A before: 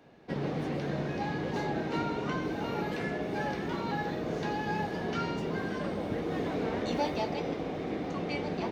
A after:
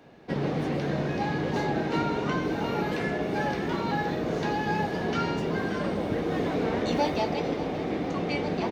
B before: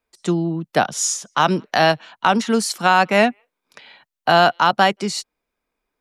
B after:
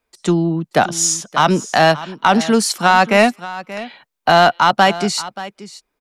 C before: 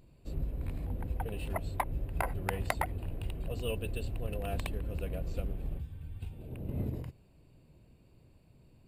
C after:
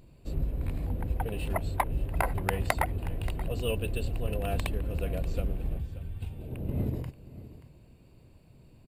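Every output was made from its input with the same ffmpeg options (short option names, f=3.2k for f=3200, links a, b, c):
-af "acontrast=44,aecho=1:1:580:0.158,volume=-1dB"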